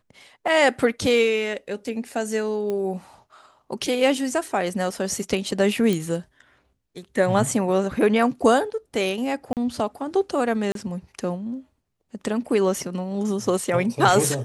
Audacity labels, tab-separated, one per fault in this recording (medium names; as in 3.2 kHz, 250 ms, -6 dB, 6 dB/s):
2.700000	2.700000	pop -17 dBFS
5.930000	5.930000	pop
9.530000	9.570000	dropout 38 ms
10.720000	10.750000	dropout 32 ms